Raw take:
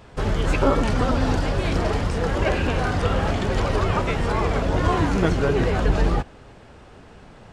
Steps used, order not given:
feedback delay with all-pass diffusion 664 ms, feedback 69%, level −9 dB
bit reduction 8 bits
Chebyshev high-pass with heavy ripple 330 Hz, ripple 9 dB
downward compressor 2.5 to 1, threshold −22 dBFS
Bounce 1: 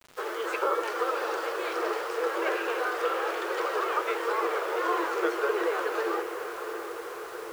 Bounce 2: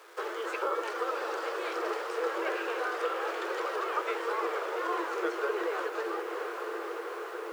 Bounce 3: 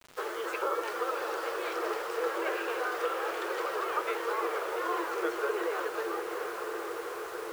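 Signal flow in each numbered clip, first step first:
Chebyshev high-pass with heavy ripple, then downward compressor, then feedback delay with all-pass diffusion, then bit reduction
feedback delay with all-pass diffusion, then downward compressor, then bit reduction, then Chebyshev high-pass with heavy ripple
feedback delay with all-pass diffusion, then downward compressor, then Chebyshev high-pass with heavy ripple, then bit reduction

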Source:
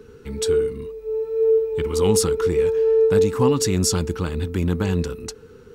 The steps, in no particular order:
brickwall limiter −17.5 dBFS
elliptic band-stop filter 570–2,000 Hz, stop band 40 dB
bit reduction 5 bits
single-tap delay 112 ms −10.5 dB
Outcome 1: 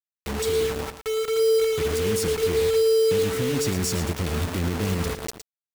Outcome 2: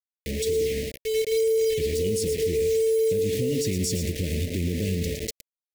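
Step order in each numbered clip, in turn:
elliptic band-stop filter, then brickwall limiter, then bit reduction, then single-tap delay
single-tap delay, then bit reduction, then elliptic band-stop filter, then brickwall limiter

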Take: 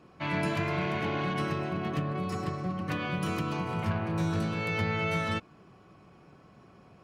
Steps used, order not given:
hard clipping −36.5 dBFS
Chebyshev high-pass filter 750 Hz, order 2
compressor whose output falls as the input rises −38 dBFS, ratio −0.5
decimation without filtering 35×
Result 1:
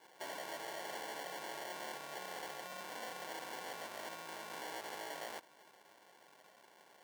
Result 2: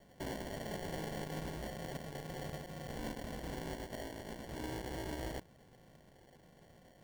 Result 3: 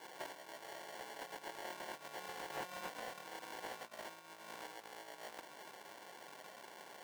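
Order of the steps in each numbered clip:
hard clipping, then compressor whose output falls as the input rises, then decimation without filtering, then Chebyshev high-pass filter
hard clipping, then compressor whose output falls as the input rises, then Chebyshev high-pass filter, then decimation without filtering
decimation without filtering, then compressor whose output falls as the input rises, then Chebyshev high-pass filter, then hard clipping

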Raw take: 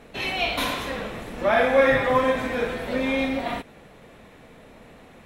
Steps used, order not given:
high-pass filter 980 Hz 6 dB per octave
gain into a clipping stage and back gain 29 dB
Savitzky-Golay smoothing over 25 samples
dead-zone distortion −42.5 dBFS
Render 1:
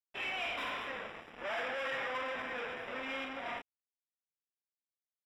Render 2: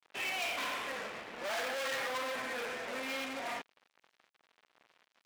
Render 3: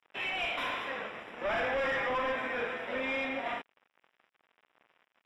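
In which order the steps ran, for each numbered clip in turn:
gain into a clipping stage and back, then high-pass filter, then dead-zone distortion, then Savitzky-Golay smoothing
Savitzky-Golay smoothing, then gain into a clipping stage and back, then dead-zone distortion, then high-pass filter
dead-zone distortion, then high-pass filter, then gain into a clipping stage and back, then Savitzky-Golay smoothing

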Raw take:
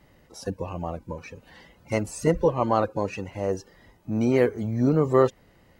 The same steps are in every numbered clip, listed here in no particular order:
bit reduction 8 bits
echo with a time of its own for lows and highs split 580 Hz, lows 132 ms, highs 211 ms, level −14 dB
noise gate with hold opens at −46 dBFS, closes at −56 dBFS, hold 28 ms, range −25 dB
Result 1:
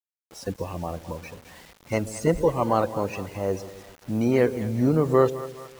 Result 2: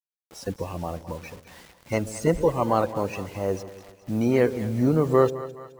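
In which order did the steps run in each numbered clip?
noise gate with hold, then echo with a time of its own for lows and highs, then bit reduction
noise gate with hold, then bit reduction, then echo with a time of its own for lows and highs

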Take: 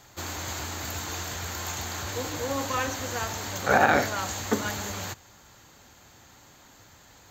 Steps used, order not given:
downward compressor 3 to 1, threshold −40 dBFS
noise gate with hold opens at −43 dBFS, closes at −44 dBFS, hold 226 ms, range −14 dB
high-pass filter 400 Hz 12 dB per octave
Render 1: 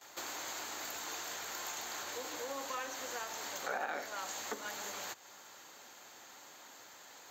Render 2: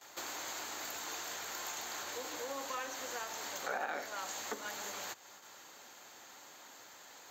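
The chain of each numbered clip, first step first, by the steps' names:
noise gate with hold, then downward compressor, then high-pass filter
downward compressor, then noise gate with hold, then high-pass filter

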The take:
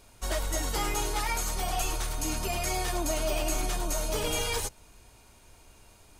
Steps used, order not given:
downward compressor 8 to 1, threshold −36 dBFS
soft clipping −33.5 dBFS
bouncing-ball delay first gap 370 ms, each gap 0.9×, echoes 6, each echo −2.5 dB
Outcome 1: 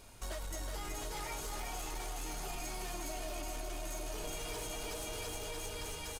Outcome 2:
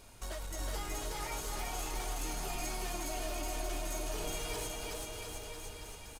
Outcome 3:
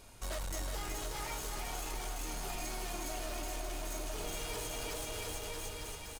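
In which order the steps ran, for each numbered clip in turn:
bouncing-ball delay, then downward compressor, then soft clipping
downward compressor, then soft clipping, then bouncing-ball delay
soft clipping, then bouncing-ball delay, then downward compressor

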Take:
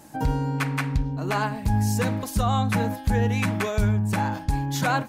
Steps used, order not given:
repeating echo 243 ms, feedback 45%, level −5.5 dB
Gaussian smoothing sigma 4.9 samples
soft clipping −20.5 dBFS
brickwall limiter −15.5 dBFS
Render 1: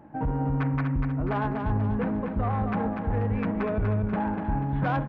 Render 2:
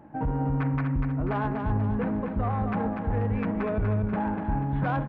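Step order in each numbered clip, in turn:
Gaussian smoothing, then brickwall limiter, then soft clipping, then repeating echo
brickwall limiter, then Gaussian smoothing, then soft clipping, then repeating echo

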